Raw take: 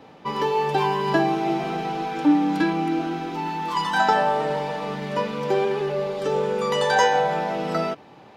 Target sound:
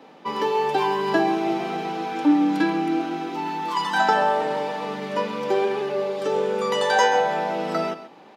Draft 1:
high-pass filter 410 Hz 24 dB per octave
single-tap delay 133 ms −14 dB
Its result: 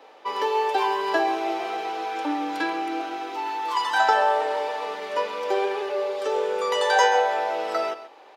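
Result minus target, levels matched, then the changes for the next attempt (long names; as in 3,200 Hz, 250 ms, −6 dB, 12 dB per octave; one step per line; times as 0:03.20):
250 Hz band −8.5 dB
change: high-pass filter 190 Hz 24 dB per octave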